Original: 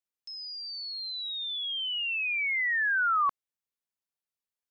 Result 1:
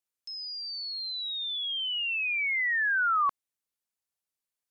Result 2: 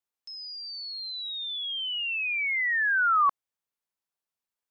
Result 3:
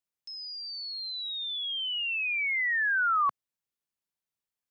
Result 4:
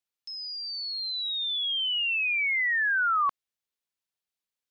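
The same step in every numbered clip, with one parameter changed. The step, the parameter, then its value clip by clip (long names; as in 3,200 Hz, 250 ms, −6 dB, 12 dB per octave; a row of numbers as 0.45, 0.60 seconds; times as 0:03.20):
parametric band, centre frequency: 10,000, 930, 140, 3,500 Hertz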